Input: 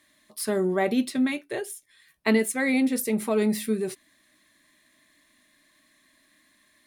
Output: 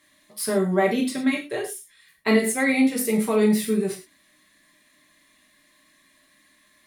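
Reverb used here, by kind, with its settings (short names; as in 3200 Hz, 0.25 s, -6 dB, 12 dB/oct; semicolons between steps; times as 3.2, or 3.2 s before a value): non-linear reverb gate 0.14 s falling, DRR -1 dB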